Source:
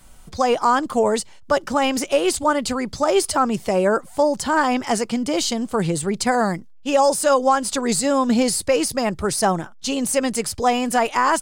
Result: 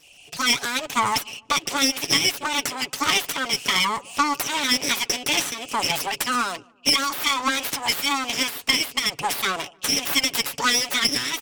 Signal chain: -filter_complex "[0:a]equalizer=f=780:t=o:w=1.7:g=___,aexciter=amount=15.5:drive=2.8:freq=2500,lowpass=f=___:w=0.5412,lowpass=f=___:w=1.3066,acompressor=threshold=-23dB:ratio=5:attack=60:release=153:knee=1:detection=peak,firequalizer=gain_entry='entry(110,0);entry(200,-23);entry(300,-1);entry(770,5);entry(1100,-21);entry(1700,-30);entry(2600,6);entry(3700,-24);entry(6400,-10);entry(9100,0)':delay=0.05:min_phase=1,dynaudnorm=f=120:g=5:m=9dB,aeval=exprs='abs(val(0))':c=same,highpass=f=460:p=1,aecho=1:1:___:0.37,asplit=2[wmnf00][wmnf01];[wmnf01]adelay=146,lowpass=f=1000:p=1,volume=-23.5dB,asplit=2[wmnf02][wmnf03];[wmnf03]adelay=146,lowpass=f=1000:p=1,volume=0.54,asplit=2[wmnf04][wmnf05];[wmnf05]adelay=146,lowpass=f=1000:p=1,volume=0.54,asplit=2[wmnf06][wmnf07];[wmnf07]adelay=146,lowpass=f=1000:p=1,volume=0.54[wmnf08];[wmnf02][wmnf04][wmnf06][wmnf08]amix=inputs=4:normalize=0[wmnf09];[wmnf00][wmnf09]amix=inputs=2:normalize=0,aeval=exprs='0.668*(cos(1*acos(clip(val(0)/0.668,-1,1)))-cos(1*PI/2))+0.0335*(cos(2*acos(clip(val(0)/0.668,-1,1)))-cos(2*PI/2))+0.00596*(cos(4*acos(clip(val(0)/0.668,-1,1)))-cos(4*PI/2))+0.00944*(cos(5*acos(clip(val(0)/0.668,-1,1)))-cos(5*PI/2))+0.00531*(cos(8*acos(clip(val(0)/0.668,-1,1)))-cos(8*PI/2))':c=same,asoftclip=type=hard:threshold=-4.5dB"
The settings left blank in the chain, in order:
-7, 4500, 4500, 7.1